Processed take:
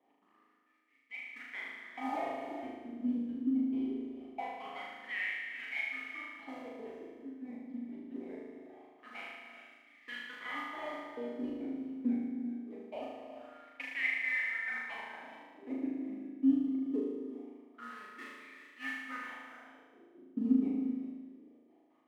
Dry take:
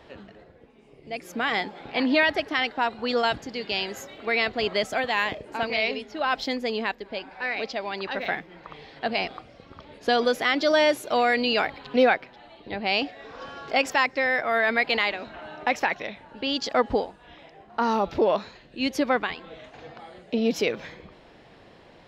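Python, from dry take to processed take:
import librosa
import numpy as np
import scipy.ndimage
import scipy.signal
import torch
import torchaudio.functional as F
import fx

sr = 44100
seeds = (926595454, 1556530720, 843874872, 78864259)

p1 = fx.step_gate(x, sr, bpm=137, pattern='x.xxx.x.x.xxx.xx', floor_db=-60.0, edge_ms=4.5)
p2 = fx.vowel_filter(p1, sr, vowel='i')
p3 = fx.mod_noise(p2, sr, seeds[0], snr_db=11)
p4 = fx.sample_hold(p3, sr, seeds[1], rate_hz=1500.0, jitter_pct=0)
p5 = p3 + F.gain(torch.from_numpy(p4), -4.0).numpy()
p6 = 10.0 ** (-18.5 / 20.0) * np.tanh(p5 / 10.0 ** (-18.5 / 20.0))
p7 = fx.wah_lfo(p6, sr, hz=0.23, low_hz=250.0, high_hz=2100.0, q=5.1)
p8 = p7 + fx.room_flutter(p7, sr, wall_m=6.5, rt60_s=1.3, dry=0)
p9 = fx.rev_gated(p8, sr, seeds[2], gate_ms=440, shape='rising', drr_db=8.5)
y = F.gain(torch.from_numpy(p9), 4.5).numpy()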